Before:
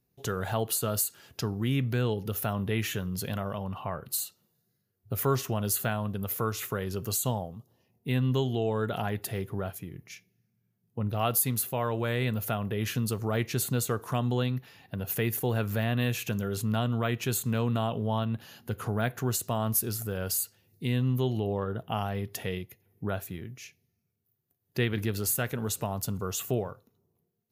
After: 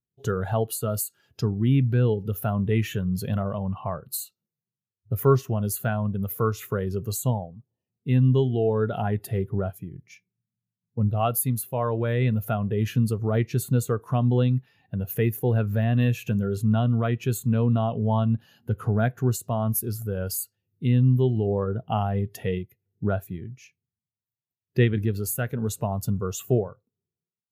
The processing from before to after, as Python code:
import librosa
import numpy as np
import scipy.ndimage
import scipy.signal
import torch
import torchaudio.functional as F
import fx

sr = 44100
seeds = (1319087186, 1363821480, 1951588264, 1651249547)

p1 = fx.rider(x, sr, range_db=3, speed_s=0.5)
p2 = x + (p1 * librosa.db_to_amplitude(2.0))
p3 = fx.spectral_expand(p2, sr, expansion=1.5)
y = p3 * librosa.db_to_amplitude(-2.0)